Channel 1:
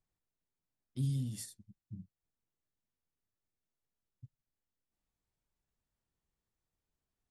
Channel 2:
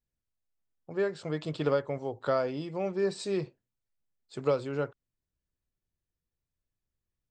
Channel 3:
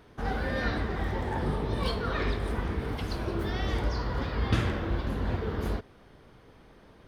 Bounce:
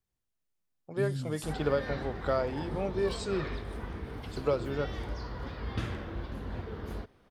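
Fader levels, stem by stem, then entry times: -1.0, -1.5, -8.0 dB; 0.00, 0.00, 1.25 s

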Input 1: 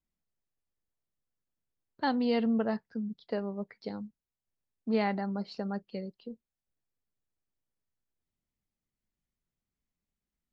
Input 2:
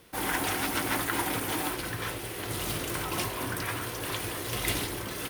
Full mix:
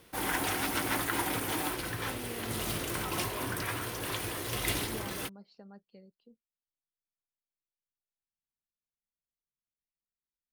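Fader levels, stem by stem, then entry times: -17.0, -2.0 dB; 0.00, 0.00 s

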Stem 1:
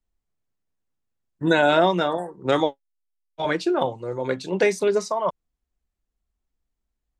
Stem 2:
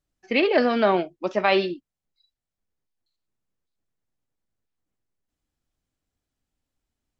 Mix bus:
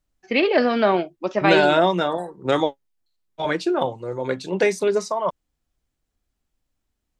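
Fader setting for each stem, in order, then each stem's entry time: +0.5, +1.5 dB; 0.00, 0.00 s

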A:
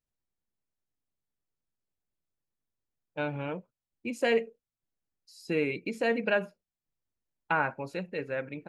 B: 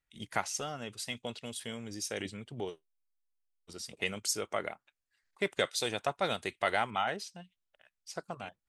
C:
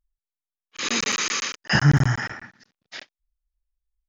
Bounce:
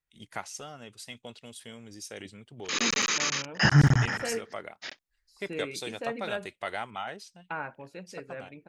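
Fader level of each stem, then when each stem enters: -8.0, -4.5, -2.5 dB; 0.00, 0.00, 1.90 s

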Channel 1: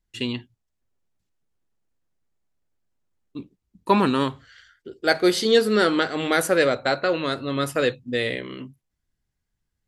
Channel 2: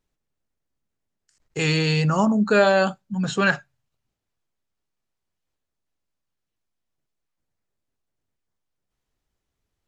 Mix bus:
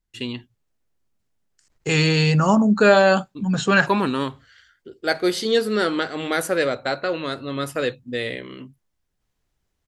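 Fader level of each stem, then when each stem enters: -2.0, +3.0 dB; 0.00, 0.30 s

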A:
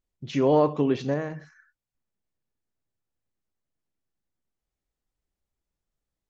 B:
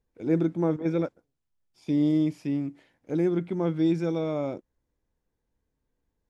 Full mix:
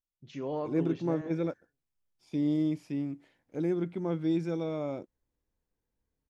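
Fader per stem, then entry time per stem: -14.5, -5.0 dB; 0.00, 0.45 s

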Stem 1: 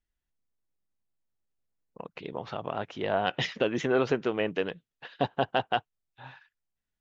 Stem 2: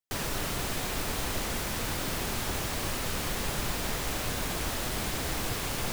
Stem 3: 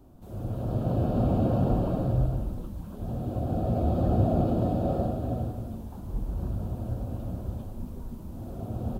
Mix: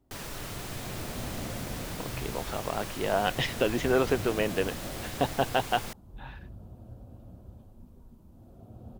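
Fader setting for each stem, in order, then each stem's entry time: +0.5, -7.0, -14.5 dB; 0.00, 0.00, 0.00 s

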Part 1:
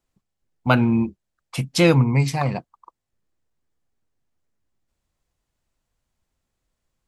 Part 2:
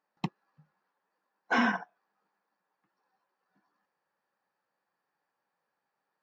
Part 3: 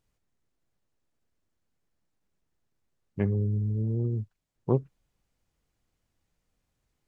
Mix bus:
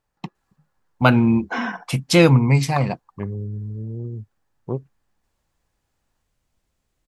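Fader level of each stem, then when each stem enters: +2.5, +0.5, -2.0 dB; 0.35, 0.00, 0.00 s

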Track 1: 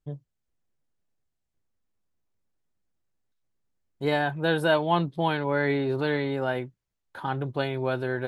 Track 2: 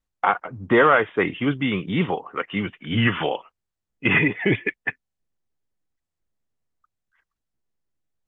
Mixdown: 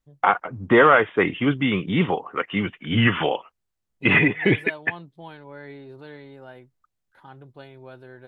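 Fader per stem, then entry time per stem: -15.5, +1.5 dB; 0.00, 0.00 s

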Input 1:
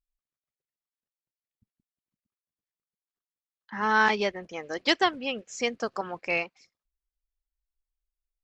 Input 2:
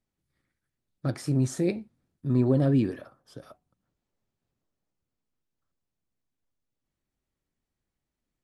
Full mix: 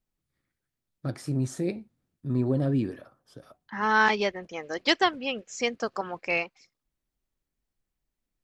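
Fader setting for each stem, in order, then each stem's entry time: +0.5, -3.0 dB; 0.00, 0.00 s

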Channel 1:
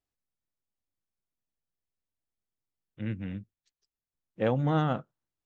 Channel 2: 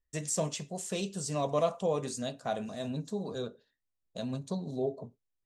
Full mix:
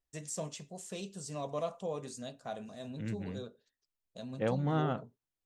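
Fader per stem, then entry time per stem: -5.0, -7.5 dB; 0.00, 0.00 s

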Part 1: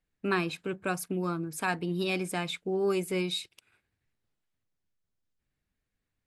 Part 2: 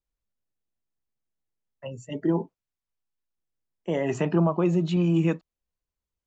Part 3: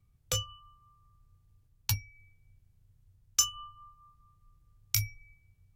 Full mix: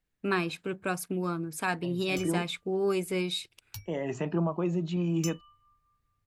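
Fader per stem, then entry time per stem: 0.0, -6.5, -13.0 dB; 0.00, 0.00, 1.85 s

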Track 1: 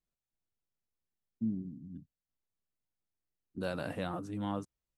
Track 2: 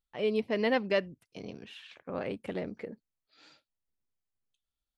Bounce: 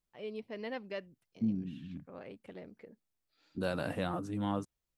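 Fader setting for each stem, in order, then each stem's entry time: +2.0, -12.5 dB; 0.00, 0.00 s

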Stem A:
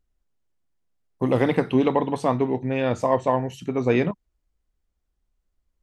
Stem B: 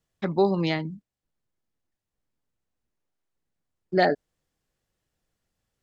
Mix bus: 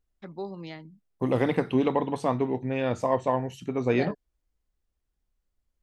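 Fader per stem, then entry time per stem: -4.0, -14.5 dB; 0.00, 0.00 s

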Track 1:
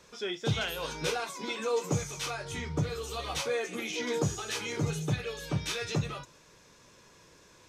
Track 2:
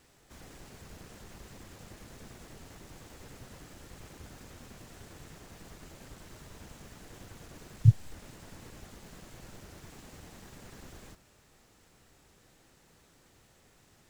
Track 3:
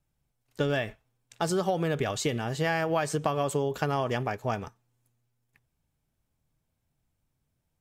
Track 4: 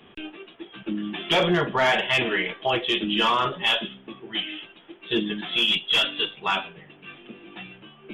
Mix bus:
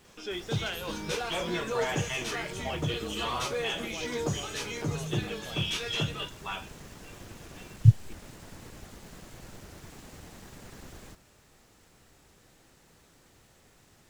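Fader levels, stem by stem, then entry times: -1.5, +2.5, -17.5, -12.5 dB; 0.05, 0.00, 1.00, 0.00 s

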